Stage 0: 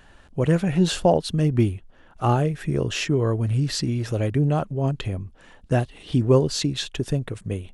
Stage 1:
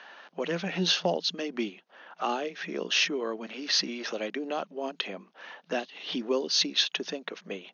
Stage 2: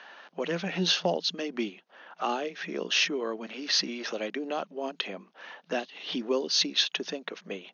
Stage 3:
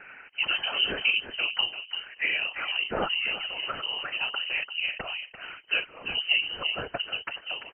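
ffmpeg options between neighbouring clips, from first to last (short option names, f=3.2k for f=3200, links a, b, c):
-filter_complex "[0:a]afftfilt=real='re*between(b*sr/4096,170,6700)':imag='im*between(b*sr/4096,170,6700)':win_size=4096:overlap=0.75,acrossover=split=310|3000[a][b][c];[b]acompressor=threshold=-41dB:ratio=2.5[d];[a][d][c]amix=inputs=3:normalize=0,acrossover=split=510 5300:gain=0.112 1 0.2[e][f][g];[e][f][g]amix=inputs=3:normalize=0,volume=7.5dB"
-af anull
-filter_complex "[0:a]afftfilt=real='hypot(re,im)*cos(2*PI*random(0))':imag='hypot(re,im)*sin(2*PI*random(1))':win_size=512:overlap=0.75,asplit=2[a][b];[b]adelay=342,lowpass=f=1.3k:p=1,volume=-7dB,asplit=2[c][d];[d]adelay=342,lowpass=f=1.3k:p=1,volume=0.17,asplit=2[e][f];[f]adelay=342,lowpass=f=1.3k:p=1,volume=0.17[g];[c][e][g]amix=inputs=3:normalize=0[h];[a][h]amix=inputs=2:normalize=0,lowpass=f=2.7k:t=q:w=0.5098,lowpass=f=2.7k:t=q:w=0.6013,lowpass=f=2.7k:t=q:w=0.9,lowpass=f=2.7k:t=q:w=2.563,afreqshift=-3200,volume=8.5dB"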